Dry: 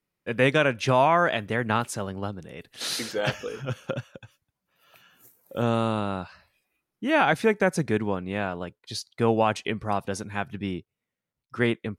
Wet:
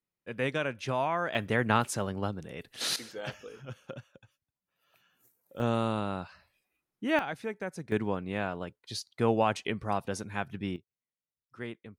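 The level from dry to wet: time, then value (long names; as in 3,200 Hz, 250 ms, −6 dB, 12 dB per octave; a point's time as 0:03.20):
−10 dB
from 0:01.35 −1 dB
from 0:02.96 −12 dB
from 0:05.60 −4.5 dB
from 0:07.19 −14.5 dB
from 0:07.92 −4 dB
from 0:10.76 −16 dB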